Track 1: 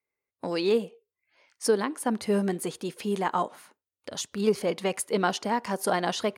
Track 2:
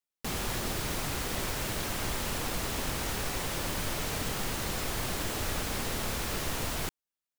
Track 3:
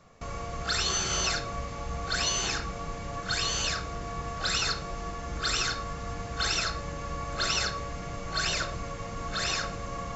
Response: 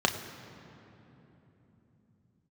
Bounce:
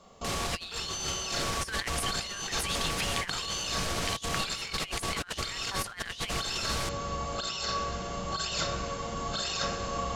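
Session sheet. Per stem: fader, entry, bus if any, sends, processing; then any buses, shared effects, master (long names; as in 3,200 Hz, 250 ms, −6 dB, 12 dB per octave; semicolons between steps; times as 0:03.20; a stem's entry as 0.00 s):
−7.0 dB, 0.00 s, no bus, no send, parametric band 2,500 Hz +9 dB 2.9 octaves; auto-filter high-pass saw up 1.4 Hz 1,000–3,400 Hz
−1.0 dB, 0.00 s, bus A, no send, no processing
−8.5 dB, 0.00 s, bus A, send −9 dB, speech leveller within 3 dB 2 s
bus A: 0.0 dB, low-pass filter 7,400 Hz 12 dB per octave; brickwall limiter −29 dBFS, peak gain reduction 8.5 dB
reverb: on, RT60 3.5 s, pre-delay 3 ms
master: high-shelf EQ 2,800 Hz +7.5 dB; compressor whose output falls as the input rises −32 dBFS, ratio −0.5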